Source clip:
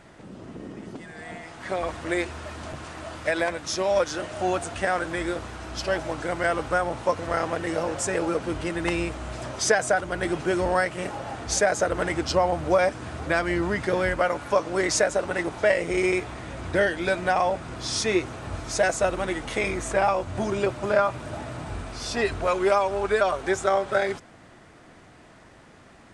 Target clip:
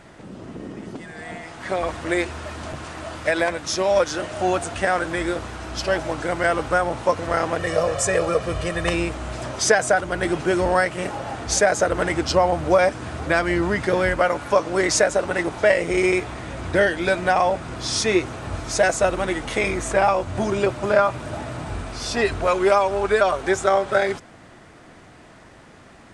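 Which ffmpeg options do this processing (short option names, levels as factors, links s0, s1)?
-filter_complex "[0:a]asettb=1/sr,asplit=3[s0][s1][s2];[s0]atrim=end=7.594[s3];[s1]atrim=start=7.59:end=8.94,asetpts=PTS-STARTPTS,afade=t=in:d=0.004:c=qsin,afade=t=out:st=1.346:d=0.004:c=qsin,aecho=1:1:1.7:0.65,atrim=end_sample=59535[s4];[s2]atrim=start=8.936[s5];[s3][s4]acrossfade=d=0.004:c1=hsin:c2=qsin[s6];[s6][s5]acrossfade=d=0.004:c1=qsin:c2=hsin,volume=1.58"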